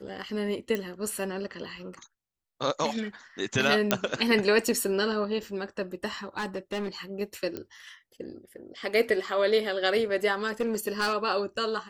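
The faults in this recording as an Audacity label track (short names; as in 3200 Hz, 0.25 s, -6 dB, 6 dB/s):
0.750000	0.750000	pop -17 dBFS
3.910000	3.910000	pop -6 dBFS
6.370000	6.880000	clipped -27.5 dBFS
7.570000	7.570000	pop -20 dBFS
10.470000	11.140000	clipped -22 dBFS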